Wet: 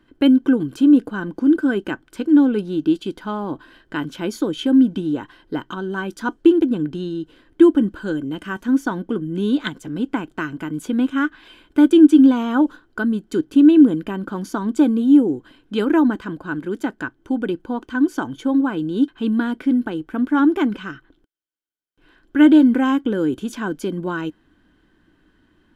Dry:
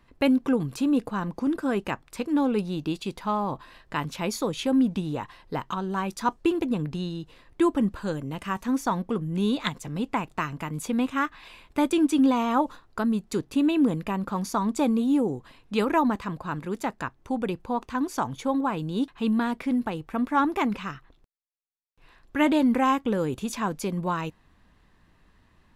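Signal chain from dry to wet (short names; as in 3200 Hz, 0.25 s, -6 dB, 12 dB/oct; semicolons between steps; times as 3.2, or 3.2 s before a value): small resonant body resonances 310/1500/3100 Hz, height 16 dB, ringing for 30 ms; gain -3 dB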